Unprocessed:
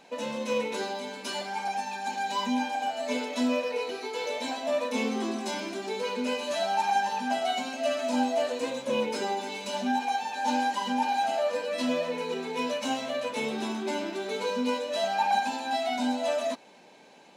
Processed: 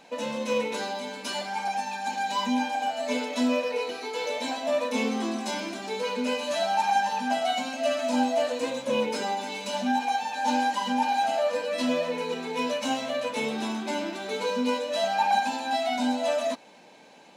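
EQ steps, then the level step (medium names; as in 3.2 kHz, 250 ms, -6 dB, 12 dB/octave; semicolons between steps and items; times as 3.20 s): band-stop 390 Hz, Q 12; +2.0 dB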